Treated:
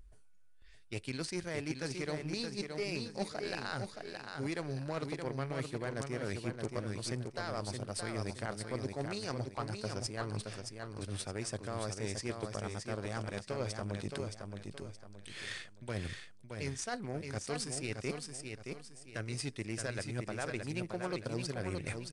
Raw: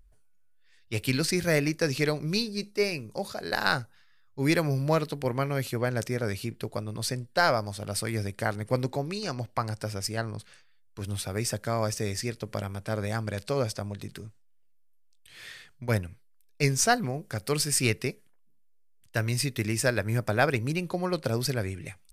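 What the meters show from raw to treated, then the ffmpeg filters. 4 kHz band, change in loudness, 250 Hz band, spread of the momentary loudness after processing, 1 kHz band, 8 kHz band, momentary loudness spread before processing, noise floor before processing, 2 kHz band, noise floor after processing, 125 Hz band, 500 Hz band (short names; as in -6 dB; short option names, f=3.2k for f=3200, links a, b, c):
-9.5 dB, -10.5 dB, -9.0 dB, 6 LU, -11.5 dB, -11.0 dB, 11 LU, -59 dBFS, -11.5 dB, -55 dBFS, -10.0 dB, -9.5 dB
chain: -af "alimiter=limit=-20dB:level=0:latency=1:release=339,areverse,acompressor=threshold=-44dB:ratio=6,areverse,aeval=exprs='0.0299*(cos(1*acos(clip(val(0)/0.0299,-1,1)))-cos(1*PI/2))+0.00211*(cos(7*acos(clip(val(0)/0.0299,-1,1)))-cos(7*PI/2))':c=same,equalizer=f=350:w=2.3:g=3,aecho=1:1:621|1242|1863|2484:0.531|0.181|0.0614|0.0209,aresample=22050,aresample=44100,volume=8dB"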